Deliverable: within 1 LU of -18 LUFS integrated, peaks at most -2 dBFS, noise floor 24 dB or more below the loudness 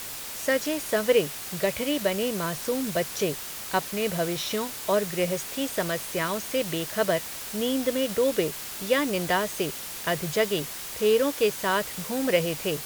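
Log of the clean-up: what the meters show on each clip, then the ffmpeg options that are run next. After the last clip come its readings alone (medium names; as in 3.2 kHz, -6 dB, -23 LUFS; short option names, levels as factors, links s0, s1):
noise floor -37 dBFS; noise floor target -51 dBFS; loudness -26.5 LUFS; peak level -8.5 dBFS; loudness target -18.0 LUFS
-> -af "afftdn=nr=14:nf=-37"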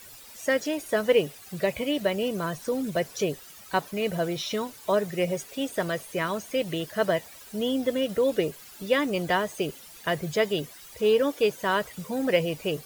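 noise floor -48 dBFS; noise floor target -52 dBFS
-> -af "afftdn=nr=6:nf=-48"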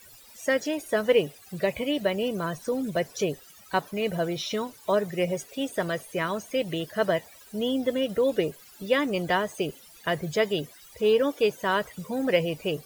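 noise floor -51 dBFS; noise floor target -52 dBFS
-> -af "afftdn=nr=6:nf=-51"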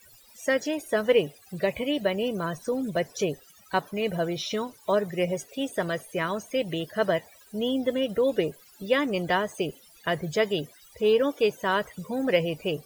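noise floor -55 dBFS; loudness -27.5 LUFS; peak level -9.0 dBFS; loudness target -18.0 LUFS
-> -af "volume=2.99,alimiter=limit=0.794:level=0:latency=1"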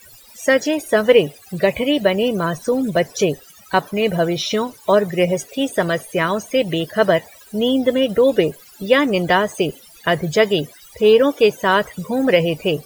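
loudness -18.0 LUFS; peak level -2.0 dBFS; noise floor -45 dBFS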